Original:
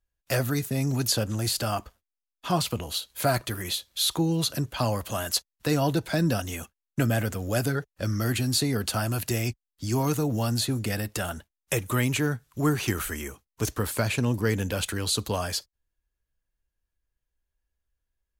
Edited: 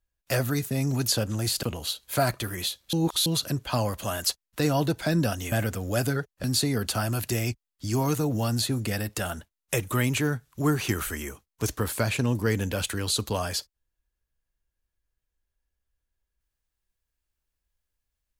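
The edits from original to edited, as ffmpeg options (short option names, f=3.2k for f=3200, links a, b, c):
-filter_complex "[0:a]asplit=6[a][b][c][d][e][f];[a]atrim=end=1.632[g];[b]atrim=start=2.698:end=4.002[h];[c]atrim=start=3.998:end=4.332,asetpts=PTS-STARTPTS,areverse[i];[d]atrim=start=4.328:end=6.592[j];[e]atrim=start=7.108:end=8.032[k];[f]atrim=start=8.428[l];[g][h]acrossfade=d=0.004:c1=hsin:c2=hsin[m];[m][i]acrossfade=d=0.004:c1=hsin:c2=hsin[n];[n][j]acrossfade=d=0.004:c1=hsin:c2=hsin[o];[o][k]acrossfade=d=0.004:c1=hsin:c2=hsin[p];[p][l]acrossfade=d=0.004:c1=hsin:c2=hsin"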